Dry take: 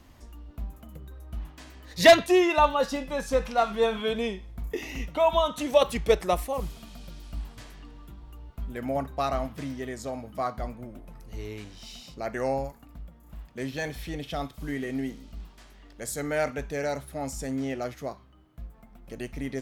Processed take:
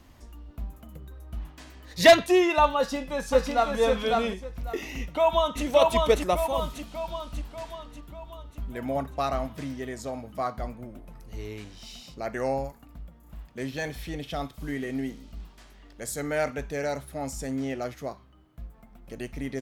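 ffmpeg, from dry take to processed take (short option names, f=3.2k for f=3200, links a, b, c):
-filter_complex "[0:a]asplit=2[a][b];[b]afade=t=in:st=2.77:d=0.01,afade=t=out:st=3.78:d=0.01,aecho=0:1:550|1100|1650:0.749894|0.149979|0.0299958[c];[a][c]amix=inputs=2:normalize=0,asplit=2[d][e];[e]afade=t=in:st=4.96:d=0.01,afade=t=out:st=5.64:d=0.01,aecho=0:1:590|1180|1770|2360|2950|3540|4130|4720:0.841395|0.462767|0.254522|0.139987|0.0769929|0.0423461|0.0232904|0.0128097[f];[d][f]amix=inputs=2:normalize=0"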